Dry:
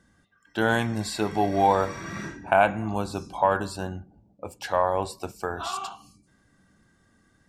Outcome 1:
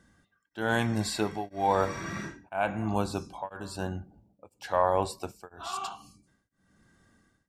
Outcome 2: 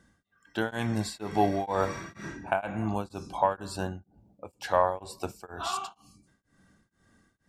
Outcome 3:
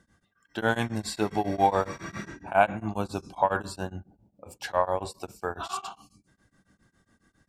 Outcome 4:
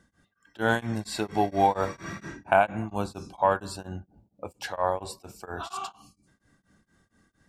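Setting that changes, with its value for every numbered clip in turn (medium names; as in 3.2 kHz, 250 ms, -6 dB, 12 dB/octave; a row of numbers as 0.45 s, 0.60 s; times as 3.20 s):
tremolo of two beating tones, nulls at: 1 Hz, 2.1 Hz, 7.3 Hz, 4.3 Hz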